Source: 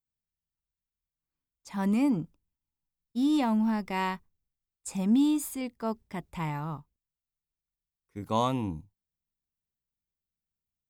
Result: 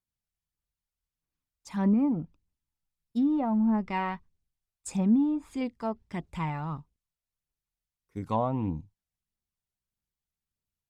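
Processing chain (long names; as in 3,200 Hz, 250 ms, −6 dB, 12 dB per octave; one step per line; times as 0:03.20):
treble cut that deepens with the level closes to 980 Hz, closed at −23 dBFS
phase shifter 1.6 Hz, delay 1.6 ms, feedback 34%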